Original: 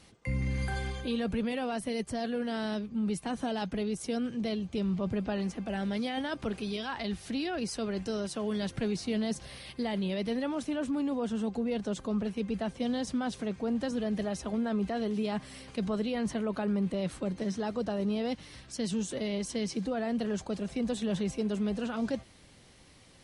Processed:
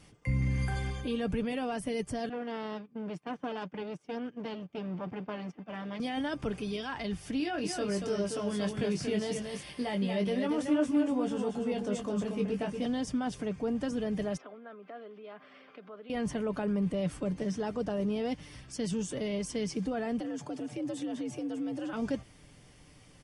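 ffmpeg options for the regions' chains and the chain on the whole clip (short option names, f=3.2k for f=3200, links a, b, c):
-filter_complex "[0:a]asettb=1/sr,asplit=3[a][b][c];[a]atrim=end=2.294[d];[b]atrim=start=2.29:end=6,asetpts=PTS-STARTPTS,afade=t=in:d=0.004:c=qsin,afade=t=out:st=3.706:d=0.004:c=qsin,agate=range=-16dB:threshold=-36dB:ratio=16:release=100:detection=peak,aeval=exprs='clip(val(0),-1,0.00891)':c=same,highpass=200,lowpass=3.5k[e];[c]atrim=start=5.996[f];[d][e]acrossfade=d=0.004:c1=hsin:c2=qsin[g];[g][f]acrossfade=d=0.004:c1=qsin:c2=hsin,asettb=1/sr,asplit=3[h][i][j];[h]atrim=end=7.404[k];[i]atrim=start=7.4:end=12.86,asetpts=PTS-STARTPTS,afade=t=in:d=0.004:c=qsin,afade=t=out:st=5.456:d=0.004:c=qsin,highpass=f=160:p=1,asplit=2[l][m];[m]adelay=20,volume=-5dB[n];[l][n]amix=inputs=2:normalize=0,atrim=end_sample=240786,aecho=1:1:232:0.531,atrim=end_sample=240786[o];[j]atrim=start=12.856[p];[k][o]acrossfade=d=0.004:c1=hsin:c2=qsin[q];[q][p]acrossfade=d=0.004:c1=qsin:c2=hsin,asettb=1/sr,asplit=3[r][s][t];[r]atrim=end=14.374[u];[s]atrim=start=14.37:end=16.1,asetpts=PTS-STARTPTS,afade=t=in:d=0.004:c=qsin,afade=t=out:st=1.726:d=0.004:c=qsin,acompressor=threshold=-36dB:ratio=5:attack=3.2:release=140:knee=1:detection=peak,highpass=f=310:w=0.5412,highpass=f=310:w=1.3066,equalizer=f=320:t=q:w=4:g=-10,equalizer=f=460:t=q:w=4:g=-4,equalizer=f=880:t=q:w=4:g=-7,equalizer=f=1.3k:t=q:w=4:g=4,equalizer=f=1.9k:t=q:w=4:g=-4,equalizer=f=2.8k:t=q:w=4:g=-6,lowpass=f=3.1k:w=0.5412,lowpass=f=3.1k:w=1.3066[v];[t]atrim=start=16.096[w];[u][v]acrossfade=d=0.004:c1=hsin:c2=qsin[x];[x][w]acrossfade=d=0.004:c1=qsin:c2=hsin,asettb=1/sr,asplit=3[y][z][aa];[y]atrim=end=20.204[ab];[z]atrim=start=20.2:end=21.93,asetpts=PTS-STARTPTS,afade=t=in:d=0.004:c=qsin,afade=t=out:st=1.726:d=0.004:c=qsin,acompressor=threshold=-35dB:ratio=3:attack=3.2:release=140:knee=1:detection=peak,afreqshift=72[ac];[aa]atrim=start=21.926[ad];[ab][ac]acrossfade=d=0.004:c1=hsin:c2=qsin[ae];[ae][ad]acrossfade=d=0.004:c1=qsin:c2=hsin,lowshelf=f=190:g=5.5,bandreject=f=4k:w=5.7,aecho=1:1:6.8:0.33,volume=-1.5dB"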